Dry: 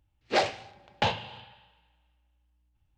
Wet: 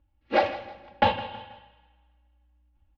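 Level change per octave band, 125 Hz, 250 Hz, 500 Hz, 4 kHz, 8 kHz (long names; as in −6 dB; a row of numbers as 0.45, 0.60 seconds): 0.0 dB, +4.5 dB, +4.5 dB, −2.5 dB, below −15 dB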